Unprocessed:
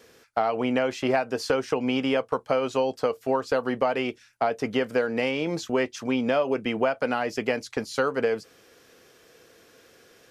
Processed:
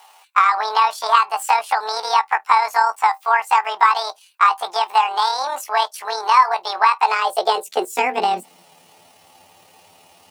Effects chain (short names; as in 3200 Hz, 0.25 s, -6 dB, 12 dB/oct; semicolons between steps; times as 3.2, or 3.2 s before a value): delay-line pitch shifter +9.5 st; high-pass sweep 1000 Hz -> 92 Hz, 6.87–9.2; gain +5.5 dB